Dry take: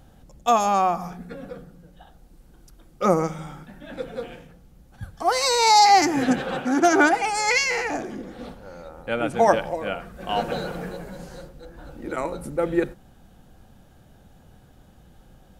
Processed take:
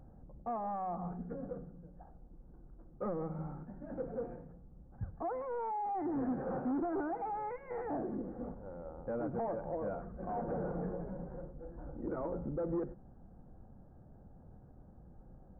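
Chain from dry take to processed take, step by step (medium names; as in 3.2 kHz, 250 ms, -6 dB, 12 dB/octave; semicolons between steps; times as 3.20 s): compression 6:1, threshold -23 dBFS, peak gain reduction 11.5 dB; hard clipper -26.5 dBFS, distortion -9 dB; Gaussian low-pass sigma 8 samples; trim -4 dB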